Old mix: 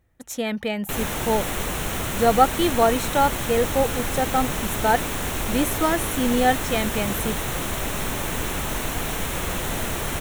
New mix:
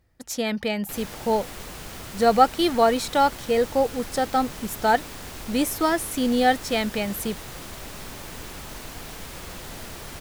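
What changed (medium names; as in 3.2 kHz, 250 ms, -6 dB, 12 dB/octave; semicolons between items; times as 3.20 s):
background -11.5 dB; master: add peaking EQ 4.8 kHz +13.5 dB 0.3 oct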